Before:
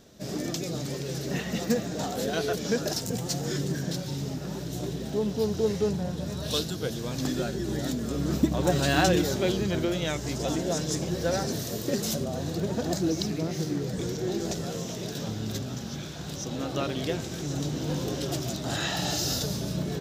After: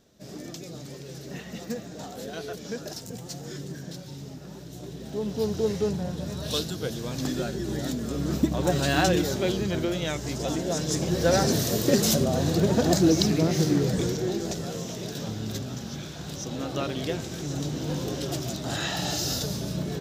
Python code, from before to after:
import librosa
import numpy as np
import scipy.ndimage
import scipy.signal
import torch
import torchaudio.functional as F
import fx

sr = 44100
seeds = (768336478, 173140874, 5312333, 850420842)

y = fx.gain(x, sr, db=fx.line((4.82, -7.5), (5.43, 0.0), (10.69, 0.0), (11.45, 7.0), (13.87, 7.0), (14.42, 0.0)))